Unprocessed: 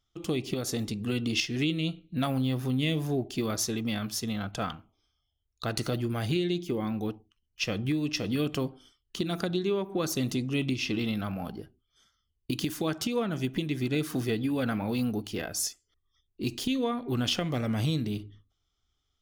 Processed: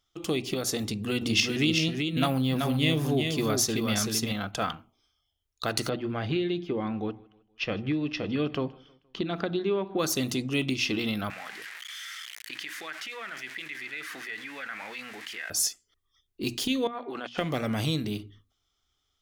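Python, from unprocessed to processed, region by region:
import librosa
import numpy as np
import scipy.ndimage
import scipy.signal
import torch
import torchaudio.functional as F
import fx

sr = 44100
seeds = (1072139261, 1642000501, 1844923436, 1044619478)

y = fx.chain(x, sr, fx.highpass(hz=53.0, slope=12),
    fx.low_shelf(hz=88.0, db=9.5),
    fx.echo_single(ms=382, db=-4.5), at=(0.83, 4.32))
y = fx.chain(y, sr, fx.air_absorb(metres=270.0),
    fx.echo_feedback(ms=157, feedback_pct=45, wet_db=-24.0), at=(5.89, 9.99))
y = fx.chain(y, sr, fx.crossing_spikes(level_db=-29.5),
    fx.bandpass_q(hz=1900.0, q=4.0),
    fx.env_flatten(amount_pct=70), at=(11.3, 15.5))
y = fx.chain(y, sr, fx.highpass(hz=480.0, slope=12),
    fx.over_compress(threshold_db=-39.0, ratio=-1.0),
    fx.spacing_loss(db_at_10k=20), at=(16.87, 17.38))
y = fx.low_shelf(y, sr, hz=300.0, db=-7.0)
y = fx.hum_notches(y, sr, base_hz=60, count=4)
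y = y * 10.0 ** (4.5 / 20.0)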